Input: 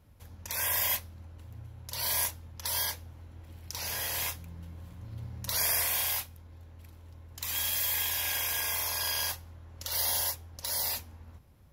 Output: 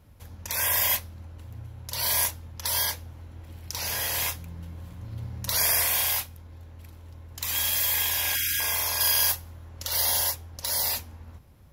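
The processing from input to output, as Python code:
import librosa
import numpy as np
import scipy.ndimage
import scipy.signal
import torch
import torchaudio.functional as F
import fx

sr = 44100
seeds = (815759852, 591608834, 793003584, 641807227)

y = fx.spec_erase(x, sr, start_s=8.35, length_s=0.25, low_hz=350.0, high_hz=1300.0)
y = fx.high_shelf(y, sr, hz=8600.0, db=8.5, at=(9.0, 9.69))
y = y * 10.0 ** (5.0 / 20.0)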